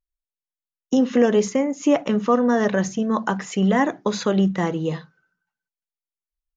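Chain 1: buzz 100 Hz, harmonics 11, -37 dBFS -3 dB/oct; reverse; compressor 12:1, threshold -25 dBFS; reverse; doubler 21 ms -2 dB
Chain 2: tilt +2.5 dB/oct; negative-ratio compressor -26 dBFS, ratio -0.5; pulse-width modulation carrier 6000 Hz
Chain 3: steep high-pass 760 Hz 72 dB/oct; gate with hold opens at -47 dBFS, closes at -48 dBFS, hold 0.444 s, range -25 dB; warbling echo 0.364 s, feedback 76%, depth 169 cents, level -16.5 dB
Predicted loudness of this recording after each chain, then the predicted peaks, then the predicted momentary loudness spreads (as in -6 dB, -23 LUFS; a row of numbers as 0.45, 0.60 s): -28.5, -27.0, -30.5 LUFS; -13.0, -10.0, -10.0 dBFS; 10, 4, 21 LU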